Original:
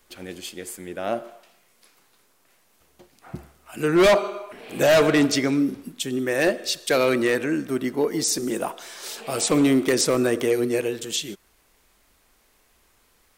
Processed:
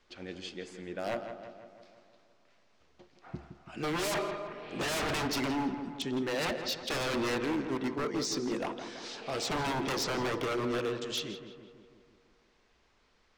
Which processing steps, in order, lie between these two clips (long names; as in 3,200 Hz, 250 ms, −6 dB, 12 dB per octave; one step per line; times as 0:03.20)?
low-pass filter 5,600 Hz 24 dB per octave
wave folding −21 dBFS
feedback echo with a low-pass in the loop 166 ms, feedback 62%, low-pass 2,600 Hz, level −9 dB
level −6 dB